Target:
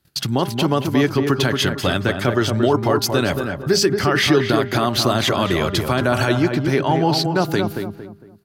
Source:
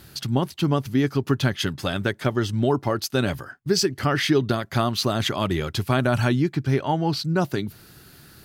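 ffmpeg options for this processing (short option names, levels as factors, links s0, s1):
-filter_complex "[0:a]bandreject=f=200.5:t=h:w=4,bandreject=f=401:t=h:w=4,bandreject=f=601.5:t=h:w=4,bandreject=f=802:t=h:w=4,bandreject=f=1002.5:t=h:w=4,bandreject=f=1203:t=h:w=4,bandreject=f=1403.5:t=h:w=4,bandreject=f=1604:t=h:w=4,agate=range=0.0316:threshold=0.00708:ratio=16:detection=peak,acrossover=split=310[s0][s1];[s0]acompressor=threshold=0.0316:ratio=6[s2];[s1]alimiter=limit=0.141:level=0:latency=1:release=20[s3];[s2][s3]amix=inputs=2:normalize=0,asplit=2[s4][s5];[s5]adelay=228,lowpass=f=1500:p=1,volume=0.562,asplit=2[s6][s7];[s7]adelay=228,lowpass=f=1500:p=1,volume=0.35,asplit=2[s8][s9];[s9]adelay=228,lowpass=f=1500:p=1,volume=0.35,asplit=2[s10][s11];[s11]adelay=228,lowpass=f=1500:p=1,volume=0.35[s12];[s4][s6][s8][s10][s12]amix=inputs=5:normalize=0,volume=2.51"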